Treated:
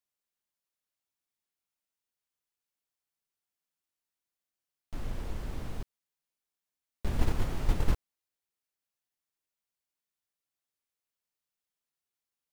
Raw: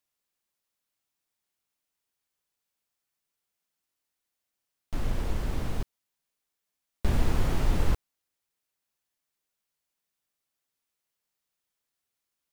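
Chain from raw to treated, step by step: gate -20 dBFS, range -7 dB

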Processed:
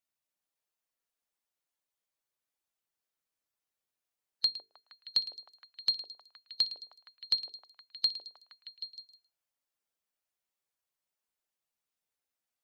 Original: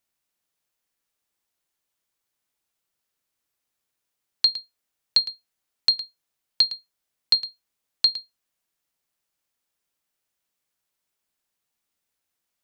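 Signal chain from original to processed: coarse spectral quantiser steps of 15 dB; hum notches 50/100/150/200/250/300/350/400/450 Hz; repeats whose band climbs or falls 156 ms, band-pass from 550 Hz, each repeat 0.7 oct, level -0.5 dB; trim -9 dB

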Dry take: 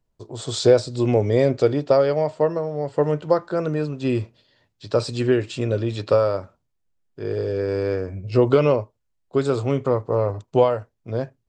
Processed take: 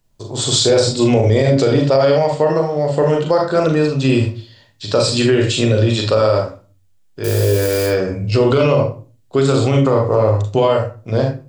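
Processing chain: 7.24–7.86 s: zero-crossing glitches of -28 dBFS; treble shelf 2 kHz +9.5 dB; reverberation RT60 0.35 s, pre-delay 37 ms, DRR 2 dB; loudness maximiser +10 dB; trim -4 dB

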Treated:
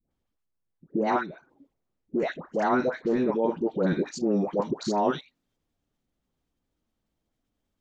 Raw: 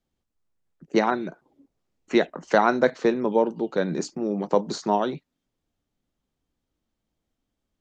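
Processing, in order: treble shelf 3 kHz -8 dB, from 3.84 s -2.5 dB; level held to a coarse grid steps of 14 dB; phase dispersion highs, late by 113 ms, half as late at 870 Hz; trim +4.5 dB

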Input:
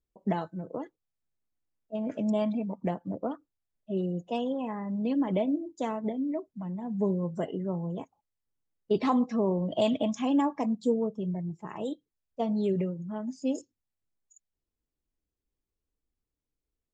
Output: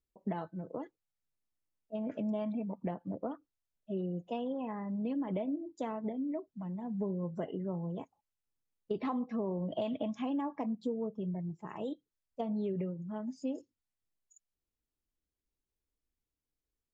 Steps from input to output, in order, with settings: low-pass that closes with the level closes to 2.9 kHz, closed at -27.5 dBFS; compression, threshold -27 dBFS, peak gain reduction 7 dB; trim -4 dB

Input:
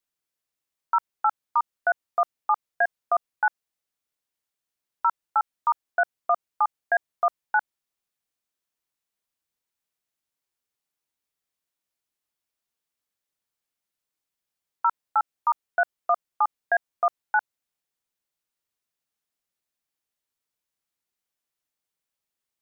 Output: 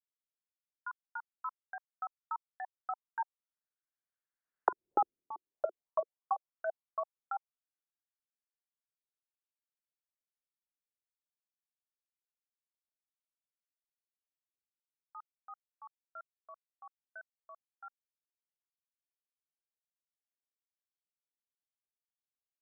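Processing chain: Doppler pass-by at 4.96 s, 25 m/s, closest 1.5 m; touch-sensitive low-pass 370–1600 Hz down, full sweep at -40.5 dBFS; trim +9.5 dB

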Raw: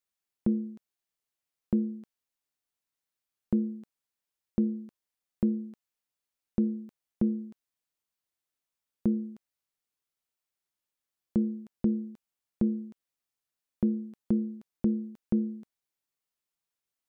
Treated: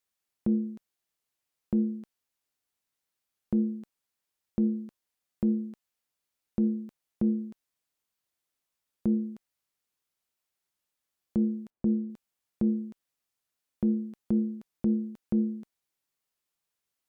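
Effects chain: Chebyshev shaper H 3 -34 dB, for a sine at -15.5 dBFS; peak limiter -22 dBFS, peak gain reduction 6 dB; 11.70–12.10 s: Bessel low-pass 1.1 kHz; trim +4 dB

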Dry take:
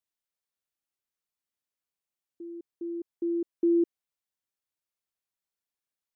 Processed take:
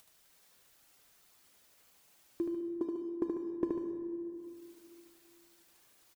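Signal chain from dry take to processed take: reverb removal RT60 1.1 s; compression 10:1, threshold -39 dBFS, peak gain reduction 17 dB; waveshaping leveller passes 1; upward compressor, threshold -45 dBFS; transient shaper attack +8 dB, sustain -7 dB; loudspeakers at several distances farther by 26 m -4 dB, 50 m -10 dB; plate-style reverb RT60 2.8 s, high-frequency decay 0.55×, DRR 5.5 dB

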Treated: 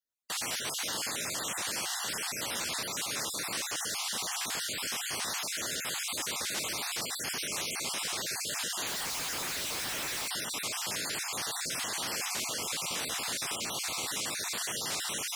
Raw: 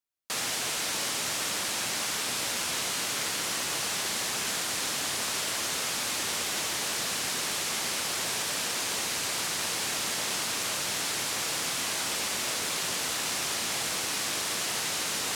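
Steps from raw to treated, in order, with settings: random holes in the spectrogram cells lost 34%; 8.87–10.28 s: Schmitt trigger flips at -45 dBFS; trim -2 dB

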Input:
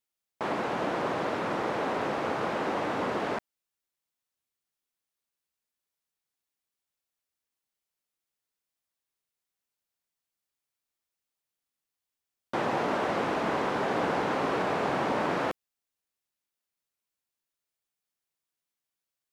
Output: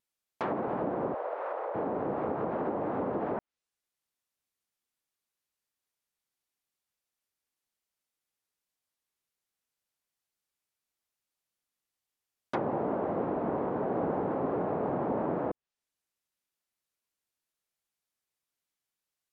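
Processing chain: vibrato 5.6 Hz 77 cents; low-pass that closes with the level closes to 710 Hz, closed at -26 dBFS; 1.14–1.75 s: elliptic band-pass 510–7600 Hz, stop band 40 dB

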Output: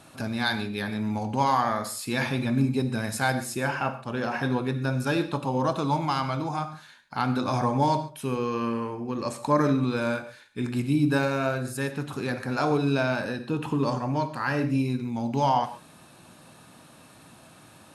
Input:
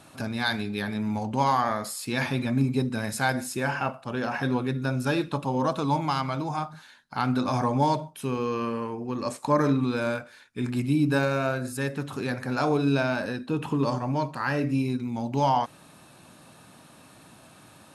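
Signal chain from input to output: gated-style reverb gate 160 ms flat, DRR 11 dB

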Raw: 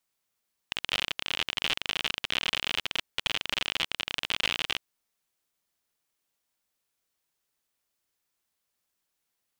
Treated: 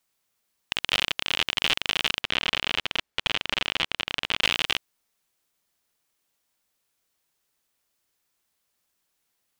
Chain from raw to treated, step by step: 2.21–4.42 s: treble shelf 5.6 kHz -10.5 dB; trim +5 dB

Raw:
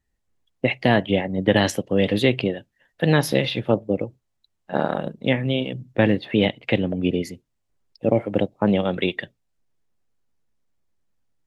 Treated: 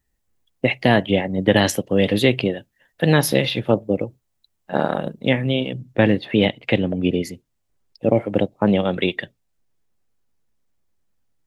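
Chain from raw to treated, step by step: treble shelf 9.9 kHz +10.5 dB, from 5.44 s +5 dB; trim +2 dB

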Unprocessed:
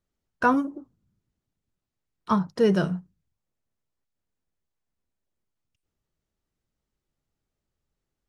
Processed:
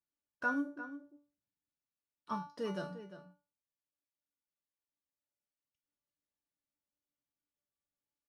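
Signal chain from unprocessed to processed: high-pass 140 Hz 6 dB/octave; feedback comb 290 Hz, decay 0.36 s, harmonics all, mix 90%; echo from a far wall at 60 m, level -12 dB

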